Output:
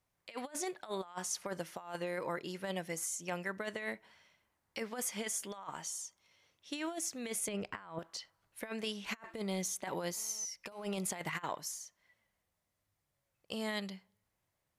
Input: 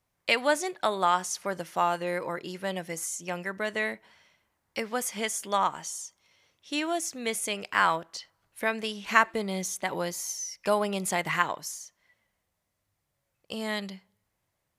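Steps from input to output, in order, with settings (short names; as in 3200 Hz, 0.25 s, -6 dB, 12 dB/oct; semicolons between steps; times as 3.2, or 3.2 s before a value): 7.48–7.99 tilt -3 dB/oct; negative-ratio compressor -31 dBFS, ratio -0.5; 10.17–11 GSM buzz -54 dBFS; gain -7.5 dB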